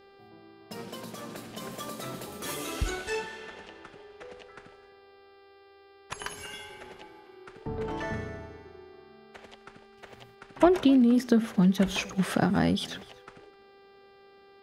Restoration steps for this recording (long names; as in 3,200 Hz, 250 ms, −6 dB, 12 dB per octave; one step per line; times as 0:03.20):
hum removal 395.3 Hz, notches 13
echo removal 254 ms −21.5 dB